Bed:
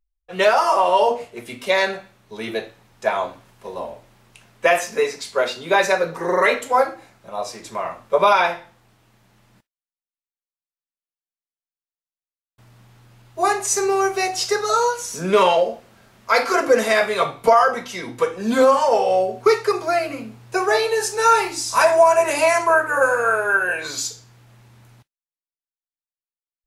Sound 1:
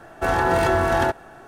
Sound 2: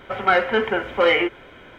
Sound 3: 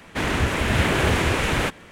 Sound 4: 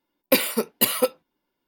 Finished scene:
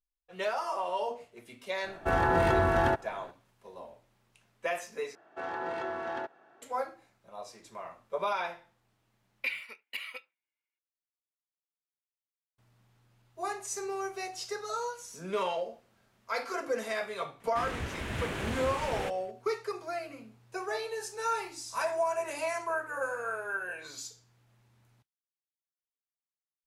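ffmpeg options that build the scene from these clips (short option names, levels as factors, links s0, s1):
-filter_complex "[1:a]asplit=2[s0][s1];[0:a]volume=0.15[s2];[s0]bass=f=250:g=2,treble=f=4000:g=-7[s3];[s1]highpass=270,lowpass=4000[s4];[4:a]bandpass=f=2300:t=q:w=6.1:csg=0[s5];[s2]asplit=2[s6][s7];[s6]atrim=end=5.154[s8];[s4]atrim=end=1.47,asetpts=PTS-STARTPTS,volume=0.168[s9];[s7]atrim=start=6.616[s10];[s3]atrim=end=1.47,asetpts=PTS-STARTPTS,volume=0.501,afade=t=in:d=0.004:c=hsin,afade=t=out:st=1.466:d=0.004:c=hsin,adelay=1840[s11];[s5]atrim=end=1.67,asetpts=PTS-STARTPTS,volume=0.75,afade=t=in:d=0.004:c=hsin,afade=t=out:st=1.666:d=0.004:c=hsin,adelay=9120[s12];[3:a]atrim=end=1.91,asetpts=PTS-STARTPTS,volume=0.178,afade=t=in:d=0.004:c=hsin,afade=t=out:st=1.906:d=0.004:c=hsin,adelay=17400[s13];[s8][s9]acrossfade=d=0.004:c1=hsin:c2=hsin[s14];[s14][s10]acrossfade=d=0.004:c1=hsin:c2=hsin[s15];[s15][s11][s12][s13]amix=inputs=4:normalize=0"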